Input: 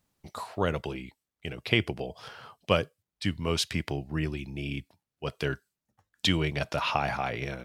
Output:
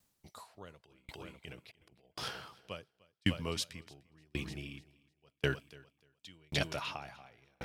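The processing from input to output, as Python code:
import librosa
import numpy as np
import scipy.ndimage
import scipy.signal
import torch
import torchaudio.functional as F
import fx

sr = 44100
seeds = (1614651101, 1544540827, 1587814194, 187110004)

y = fx.high_shelf(x, sr, hz=3300.0, db=8.0)
y = fx.over_compress(y, sr, threshold_db=-35.0, ratio=-0.5, at=(0.82, 2.59), fade=0.02)
y = fx.echo_feedback(y, sr, ms=300, feedback_pct=54, wet_db=-13.0)
y = fx.tremolo_decay(y, sr, direction='decaying', hz=0.92, depth_db=39)
y = y * 10.0 ** (-1.0 / 20.0)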